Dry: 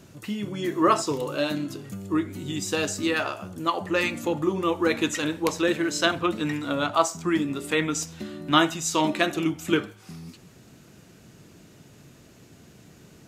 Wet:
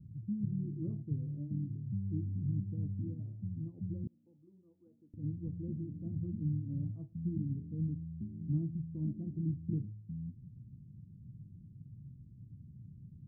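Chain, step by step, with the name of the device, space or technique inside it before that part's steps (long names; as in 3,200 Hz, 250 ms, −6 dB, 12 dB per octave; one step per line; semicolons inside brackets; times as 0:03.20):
the neighbour's flat through the wall (low-pass filter 180 Hz 24 dB per octave; parametric band 110 Hz +6 dB 0.68 octaves)
0:04.07–0:05.14: high-pass filter 960 Hz 12 dB per octave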